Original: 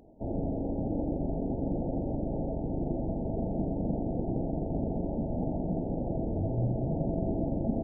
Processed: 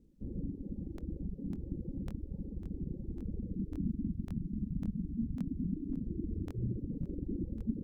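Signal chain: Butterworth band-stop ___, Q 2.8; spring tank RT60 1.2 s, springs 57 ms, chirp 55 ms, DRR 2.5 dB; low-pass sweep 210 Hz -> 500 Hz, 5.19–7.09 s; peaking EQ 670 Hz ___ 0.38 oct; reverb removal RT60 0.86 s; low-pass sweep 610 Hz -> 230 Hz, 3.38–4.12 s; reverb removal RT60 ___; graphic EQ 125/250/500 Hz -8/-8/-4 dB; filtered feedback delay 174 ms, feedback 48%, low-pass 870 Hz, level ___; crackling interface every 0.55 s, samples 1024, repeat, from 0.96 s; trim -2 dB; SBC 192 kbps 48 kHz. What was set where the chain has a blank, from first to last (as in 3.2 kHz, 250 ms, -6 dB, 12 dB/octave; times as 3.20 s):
660 Hz, -6.5 dB, 0.92 s, -23 dB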